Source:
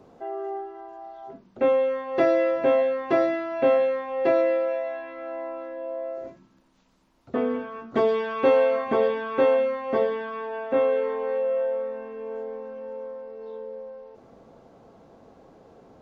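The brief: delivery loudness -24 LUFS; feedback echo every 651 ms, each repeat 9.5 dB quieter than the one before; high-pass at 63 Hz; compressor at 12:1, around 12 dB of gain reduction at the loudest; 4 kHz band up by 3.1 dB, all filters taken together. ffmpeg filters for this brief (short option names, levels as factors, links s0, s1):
-af "highpass=63,equalizer=f=4000:t=o:g=4,acompressor=threshold=0.0447:ratio=12,aecho=1:1:651|1302|1953|2604:0.335|0.111|0.0365|0.012,volume=2.51"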